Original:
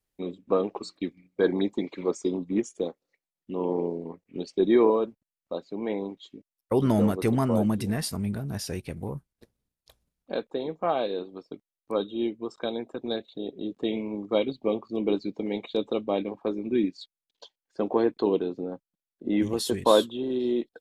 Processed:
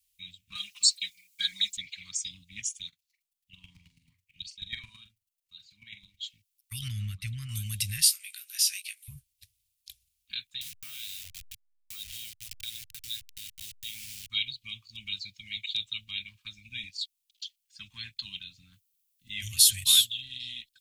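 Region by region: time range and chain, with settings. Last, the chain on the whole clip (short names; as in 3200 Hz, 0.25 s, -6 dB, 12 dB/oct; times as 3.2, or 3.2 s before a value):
0.55–1.77 tone controls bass -12 dB, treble +12 dB + comb 4.9 ms, depth 78%
2.88–6.21 chopper 9.2 Hz, depth 65%, duty 15% + doubler 44 ms -11 dB
6.88–7.49 LPF 1100 Hz 6 dB/oct + bell 660 Hz -9 dB 0.88 oct
8.05–9.08 HPF 1200 Hz 24 dB/oct + doubler 17 ms -7 dB
10.61–14.3 level-crossing sampler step -38.5 dBFS + compressor 2.5:1, threshold -34 dBFS
18.73–20.22 Butterworth band-stop 700 Hz, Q 2.5 + high shelf 9300 Hz +8 dB
whole clip: elliptic band-stop 100–2600 Hz, stop band 70 dB; tilt +2 dB/oct; gain +7 dB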